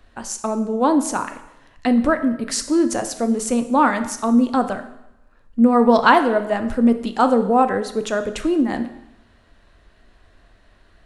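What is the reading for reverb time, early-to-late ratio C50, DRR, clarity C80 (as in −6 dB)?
0.90 s, 11.5 dB, 8.0 dB, 14.0 dB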